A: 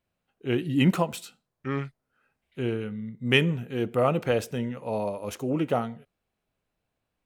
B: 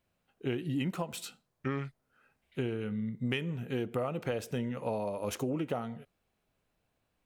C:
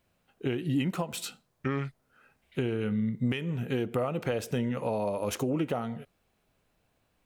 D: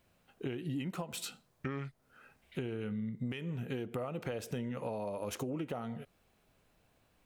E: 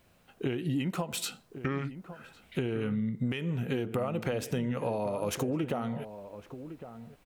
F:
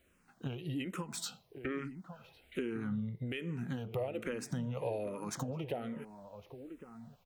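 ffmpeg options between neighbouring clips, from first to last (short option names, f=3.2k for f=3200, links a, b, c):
-af "acompressor=threshold=-32dB:ratio=16,volume=2.5dB"
-af "alimiter=level_in=1dB:limit=-24dB:level=0:latency=1:release=276,volume=-1dB,volume=6dB"
-af "acompressor=threshold=-42dB:ratio=2.5,volume=2dB"
-filter_complex "[0:a]asplit=2[a][b];[b]adelay=1108,volume=-12dB,highshelf=f=4k:g=-24.9[c];[a][c]amix=inputs=2:normalize=0,volume=6.5dB"
-filter_complex "[0:a]asplit=2[a][b];[b]afreqshift=-1.2[c];[a][c]amix=inputs=2:normalize=1,volume=-3dB"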